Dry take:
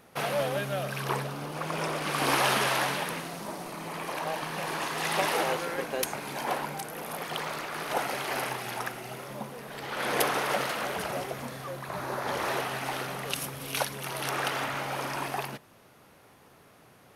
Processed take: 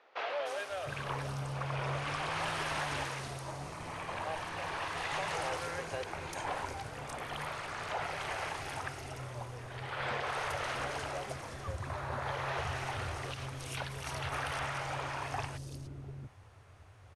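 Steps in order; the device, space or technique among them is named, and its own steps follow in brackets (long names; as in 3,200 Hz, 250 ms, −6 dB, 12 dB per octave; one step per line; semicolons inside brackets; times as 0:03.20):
low-pass filter 8,700 Hz 24 dB per octave
car stereo with a boomy subwoofer (low shelf with overshoot 130 Hz +12 dB, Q 3; brickwall limiter −21.5 dBFS, peak gain reduction 10 dB)
three-band delay without the direct sound mids, highs, lows 300/700 ms, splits 360/4,500 Hz
level −4 dB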